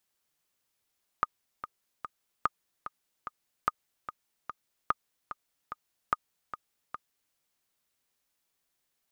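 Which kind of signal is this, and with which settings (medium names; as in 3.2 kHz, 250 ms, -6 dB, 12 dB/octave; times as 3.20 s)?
metronome 147 bpm, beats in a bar 3, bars 5, 1.23 kHz, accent 12 dB -11.5 dBFS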